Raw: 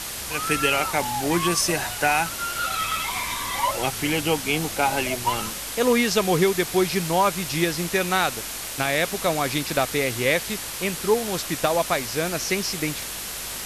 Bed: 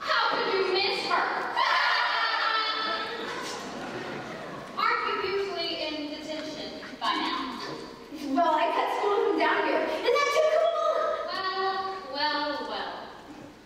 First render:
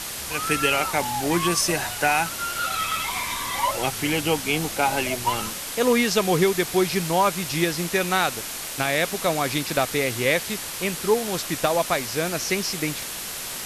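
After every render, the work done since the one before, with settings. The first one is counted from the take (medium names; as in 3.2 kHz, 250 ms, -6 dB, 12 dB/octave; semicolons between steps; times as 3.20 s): de-hum 50 Hz, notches 2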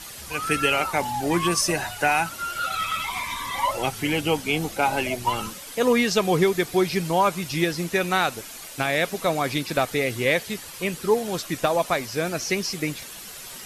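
noise reduction 10 dB, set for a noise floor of -33 dBFS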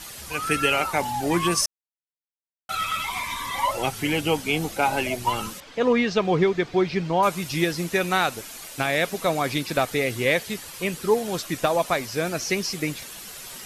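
1.66–2.69 s: mute; 5.60–7.23 s: distance through air 170 m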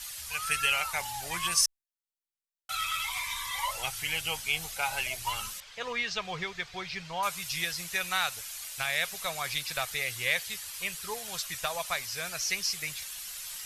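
amplifier tone stack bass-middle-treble 10-0-10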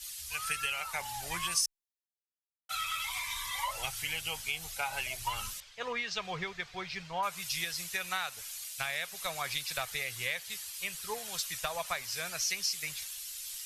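compression 6:1, threshold -31 dBFS, peak gain reduction 10.5 dB; three bands expanded up and down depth 70%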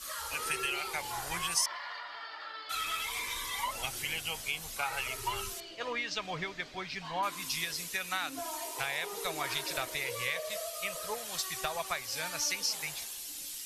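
add bed -17.5 dB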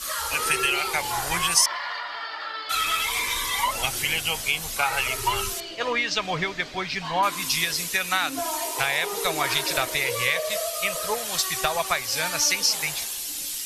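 trim +10.5 dB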